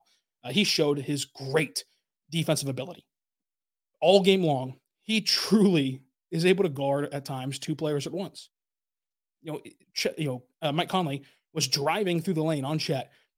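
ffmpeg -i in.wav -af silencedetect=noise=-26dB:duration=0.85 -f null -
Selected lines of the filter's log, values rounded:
silence_start: 2.84
silence_end: 4.02 | silence_duration: 1.19
silence_start: 8.24
silence_end: 9.48 | silence_duration: 1.24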